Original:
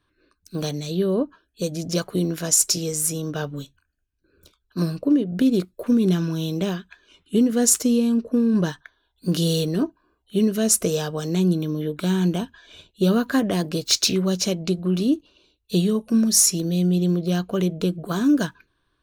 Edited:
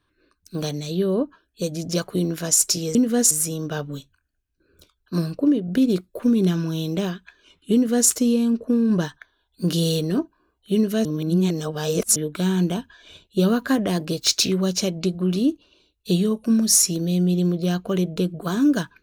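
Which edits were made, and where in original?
7.38–7.74 copy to 2.95
10.69–11.8 reverse

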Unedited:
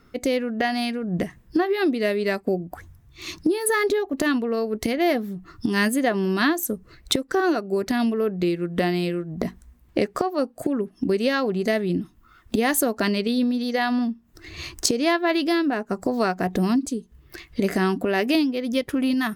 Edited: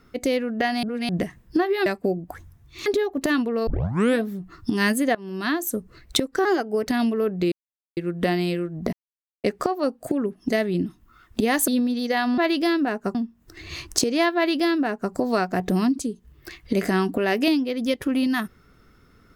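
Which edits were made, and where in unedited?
0.83–1.09 reverse
1.86–2.29 cut
3.29–3.82 cut
4.63 tape start 0.58 s
6.11–6.69 fade in, from -21.5 dB
7.41–7.87 speed 110%
8.52 insert silence 0.45 s
9.48–9.99 mute
11.04–11.64 cut
12.83–13.32 cut
15.23–16 copy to 14.02

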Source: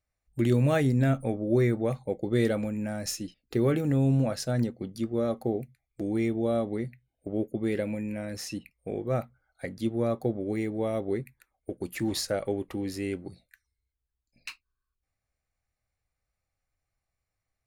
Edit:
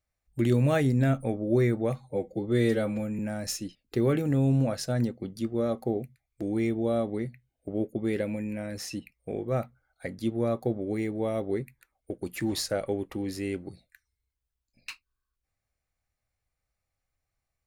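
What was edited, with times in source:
1.96–2.78 stretch 1.5×

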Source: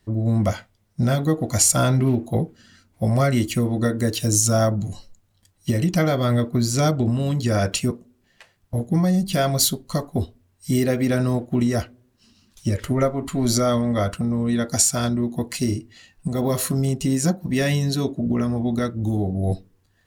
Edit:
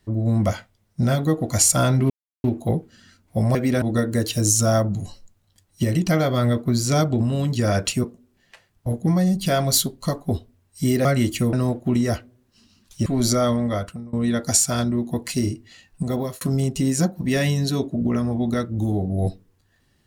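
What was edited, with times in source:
2.1 insert silence 0.34 s
3.21–3.69 swap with 10.92–11.19
12.72–13.31 cut
13.83–14.38 fade out, to -24 dB
16.36–16.66 fade out

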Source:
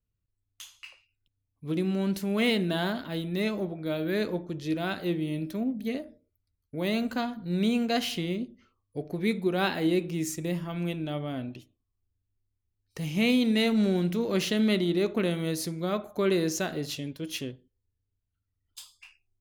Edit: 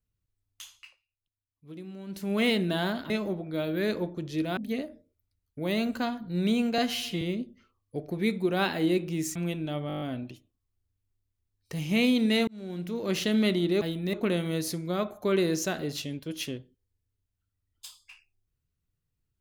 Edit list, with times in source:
0.71–2.33 dip -14 dB, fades 0.26 s
3.1–3.42 move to 15.07
4.89–5.73 cut
7.94–8.23 stretch 1.5×
10.37–10.75 cut
11.27 stutter 0.02 s, 8 plays
13.73–14.53 fade in

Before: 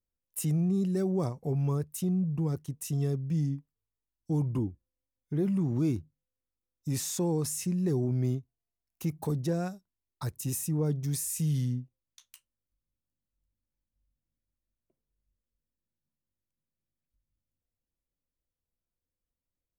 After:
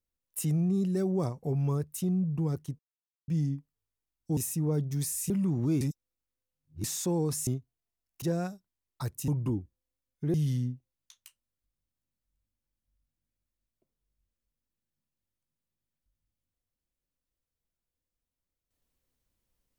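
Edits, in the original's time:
2.79–3.28 mute
4.37–5.43 swap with 10.49–11.42
5.94–6.97 reverse
7.6–8.28 cut
9.03–9.43 cut

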